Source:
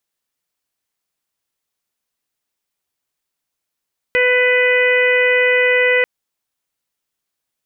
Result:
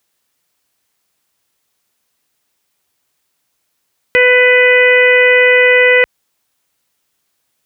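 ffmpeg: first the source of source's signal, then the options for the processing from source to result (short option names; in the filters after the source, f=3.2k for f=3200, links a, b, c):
-f lavfi -i "aevalsrc='0.178*sin(2*PI*498*t)+0.0282*sin(2*PI*996*t)+0.075*sin(2*PI*1494*t)+0.188*sin(2*PI*1992*t)+0.0944*sin(2*PI*2490*t)+0.0316*sin(2*PI*2988*t)':d=1.89:s=44100"
-af "highpass=45,alimiter=level_in=12.5dB:limit=-1dB:release=50:level=0:latency=1"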